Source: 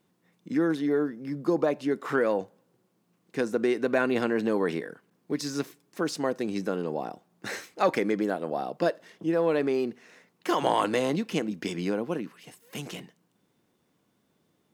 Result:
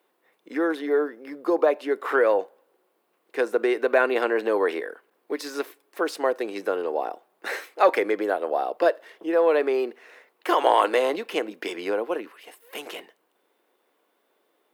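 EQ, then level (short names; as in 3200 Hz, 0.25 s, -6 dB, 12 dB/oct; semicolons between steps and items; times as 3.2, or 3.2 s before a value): HPF 390 Hz 24 dB/oct; bell 6300 Hz -11 dB 1.2 oct; +6.5 dB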